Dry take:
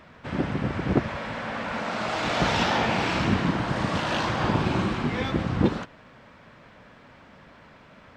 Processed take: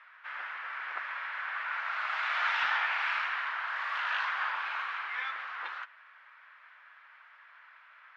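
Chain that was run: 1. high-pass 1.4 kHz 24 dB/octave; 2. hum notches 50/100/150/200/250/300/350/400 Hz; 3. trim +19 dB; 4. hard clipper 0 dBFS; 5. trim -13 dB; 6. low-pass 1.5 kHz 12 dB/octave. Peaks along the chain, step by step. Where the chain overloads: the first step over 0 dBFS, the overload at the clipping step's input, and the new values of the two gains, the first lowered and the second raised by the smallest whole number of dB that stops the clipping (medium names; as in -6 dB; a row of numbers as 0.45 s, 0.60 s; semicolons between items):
-16.0 dBFS, -16.0 dBFS, +3.0 dBFS, 0.0 dBFS, -13.0 dBFS, -18.5 dBFS; step 3, 3.0 dB; step 3 +16 dB, step 5 -10 dB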